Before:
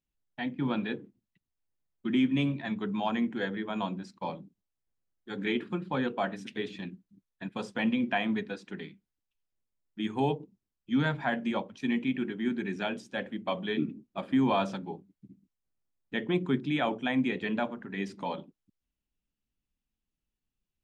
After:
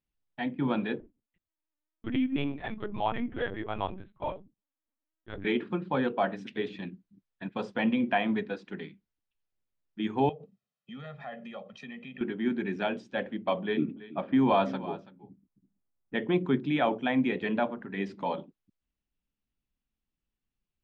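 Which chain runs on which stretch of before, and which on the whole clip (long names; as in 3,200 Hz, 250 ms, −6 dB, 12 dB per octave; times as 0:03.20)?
0:01.00–0:05.45: low-shelf EQ 220 Hz −9.5 dB + linear-prediction vocoder at 8 kHz pitch kept + one half of a high-frequency compander decoder only
0:10.29–0:12.21: comb filter 1.6 ms, depth 98% + downward compressor 4 to 1, threshold −42 dBFS + high-pass filter 140 Hz 24 dB per octave
0:13.63–0:16.15: low-pass that shuts in the quiet parts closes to 1,400 Hz, open at −22 dBFS + single-tap delay 331 ms −16 dB
whole clip: dynamic equaliser 600 Hz, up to +4 dB, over −43 dBFS, Q 0.75; low-pass filter 4,000 Hz 12 dB per octave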